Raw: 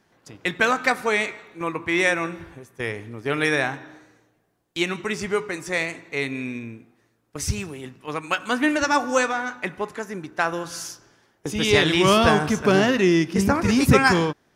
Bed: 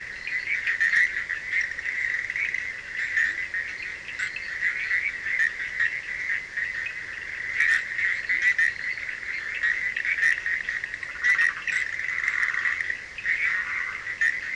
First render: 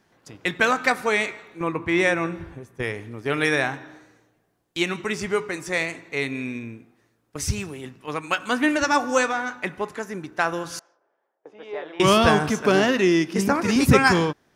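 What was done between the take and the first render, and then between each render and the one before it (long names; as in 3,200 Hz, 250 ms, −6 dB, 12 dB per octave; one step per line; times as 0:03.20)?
0:01.60–0:02.83: spectral tilt −1.5 dB per octave
0:10.79–0:12.00: four-pole ladder band-pass 710 Hz, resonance 40%
0:12.50–0:13.76: high-pass filter 190 Hz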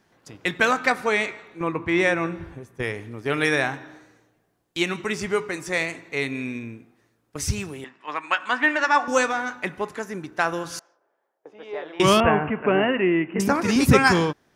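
0:00.79–0:02.43: high-shelf EQ 7,200 Hz −6.5 dB
0:07.84–0:09.08: loudspeaker in its box 410–6,700 Hz, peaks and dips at 460 Hz −8 dB, 990 Hz +5 dB, 1,800 Hz +6 dB, 4,300 Hz −5 dB, 6,100 Hz −9 dB
0:12.20–0:13.40: Chebyshev low-pass with heavy ripple 2,900 Hz, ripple 3 dB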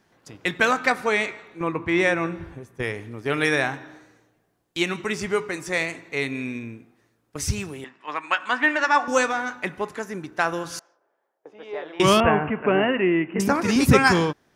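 no processing that can be heard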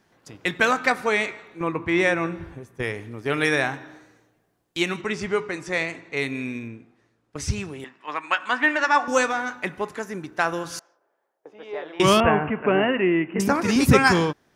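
0:05.01–0:06.17: high-frequency loss of the air 60 metres
0:06.68–0:07.80: high-frequency loss of the air 53 metres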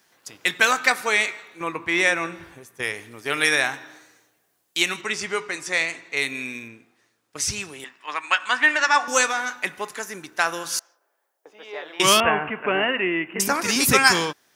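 spectral tilt +3.5 dB per octave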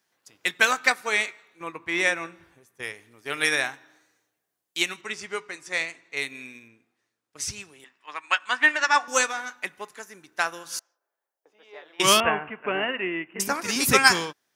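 expander for the loud parts 1.5 to 1, over −37 dBFS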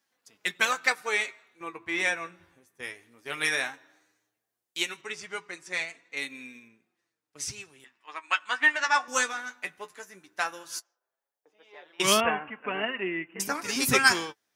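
flanger 0.16 Hz, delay 3.5 ms, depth 9.5 ms, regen +34%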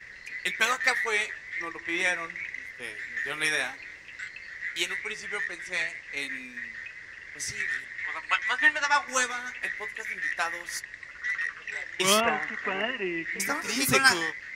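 mix in bed −9.5 dB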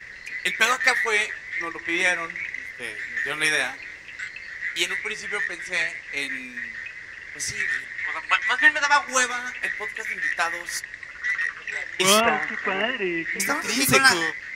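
level +5 dB
brickwall limiter −2 dBFS, peak gain reduction 2 dB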